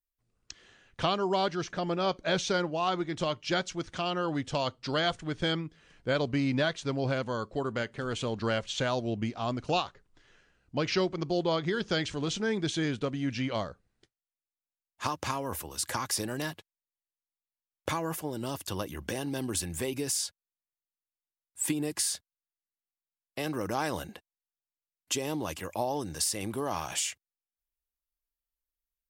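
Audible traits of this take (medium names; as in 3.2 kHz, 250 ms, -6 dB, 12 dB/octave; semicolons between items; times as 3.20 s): noise floor -95 dBFS; spectral tilt -4.0 dB/octave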